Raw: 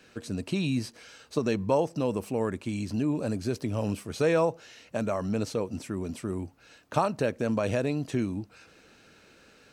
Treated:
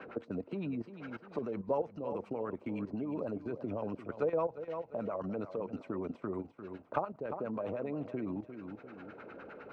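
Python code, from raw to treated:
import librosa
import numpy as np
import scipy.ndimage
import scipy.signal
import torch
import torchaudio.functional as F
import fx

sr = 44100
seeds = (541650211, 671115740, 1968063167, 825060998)

y = fx.highpass(x, sr, hz=360.0, slope=6)
y = fx.notch(y, sr, hz=1700.0, q=7.5)
y = fx.level_steps(y, sr, step_db=13)
y = fx.filter_lfo_lowpass(y, sr, shape='sine', hz=9.8, low_hz=480.0, high_hz=1800.0, q=1.6)
y = fx.vibrato(y, sr, rate_hz=7.7, depth_cents=33.0)
y = fx.echo_feedback(y, sr, ms=348, feedback_pct=24, wet_db=-13.5)
y = fx.band_squash(y, sr, depth_pct=70)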